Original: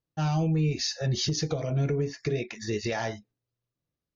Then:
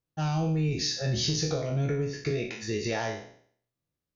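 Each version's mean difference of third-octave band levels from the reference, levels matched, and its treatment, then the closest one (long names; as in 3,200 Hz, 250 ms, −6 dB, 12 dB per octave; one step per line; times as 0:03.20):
4.0 dB: peak hold with a decay on every bin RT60 0.58 s
level −2 dB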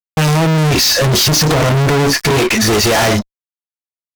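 13.0 dB: fuzz pedal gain 49 dB, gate −58 dBFS
level +2 dB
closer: first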